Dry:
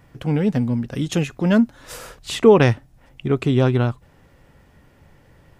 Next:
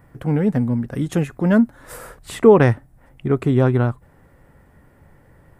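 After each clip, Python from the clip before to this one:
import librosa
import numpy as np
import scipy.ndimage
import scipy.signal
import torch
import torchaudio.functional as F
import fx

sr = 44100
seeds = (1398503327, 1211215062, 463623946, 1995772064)

y = fx.band_shelf(x, sr, hz=4100.0, db=-10.0, octaves=1.7)
y = y * 10.0 ** (1.0 / 20.0)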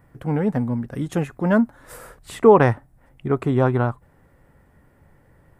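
y = fx.dynamic_eq(x, sr, hz=930.0, q=0.95, threshold_db=-34.0, ratio=4.0, max_db=8)
y = y * 10.0 ** (-4.0 / 20.0)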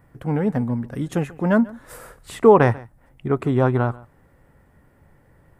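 y = x + 10.0 ** (-21.5 / 20.0) * np.pad(x, (int(141 * sr / 1000.0), 0))[:len(x)]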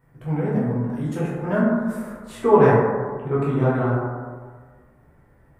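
y = fx.rev_plate(x, sr, seeds[0], rt60_s=1.6, hf_ratio=0.3, predelay_ms=0, drr_db=-8.5)
y = y * 10.0 ** (-10.0 / 20.0)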